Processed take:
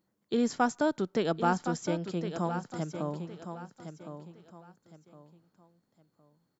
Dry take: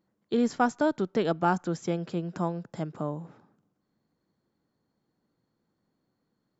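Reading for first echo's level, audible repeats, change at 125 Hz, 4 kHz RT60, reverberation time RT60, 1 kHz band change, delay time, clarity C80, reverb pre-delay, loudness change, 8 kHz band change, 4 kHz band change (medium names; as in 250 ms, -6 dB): -9.5 dB, 3, -2.0 dB, no reverb, no reverb, -1.5 dB, 1062 ms, no reverb, no reverb, -2.5 dB, no reading, +1.0 dB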